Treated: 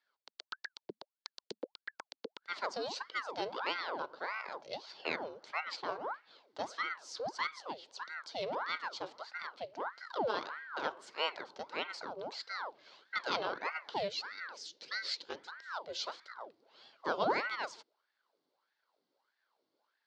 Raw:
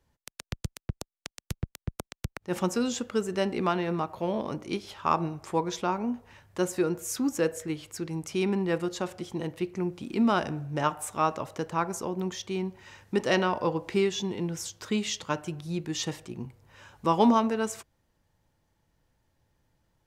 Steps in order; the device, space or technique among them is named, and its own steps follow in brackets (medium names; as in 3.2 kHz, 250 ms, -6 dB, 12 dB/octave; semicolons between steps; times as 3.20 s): voice changer toy (ring modulator with a swept carrier 980 Hz, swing 80%, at 1.6 Hz; cabinet simulation 470–4900 Hz, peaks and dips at 730 Hz -5 dB, 1.2 kHz -6 dB, 1.8 kHz -8 dB, 2.5 kHz -8 dB, 4.4 kHz +7 dB); 14.08–15.52 s: high-order bell 910 Hz -8.5 dB 1.3 oct; trim -2 dB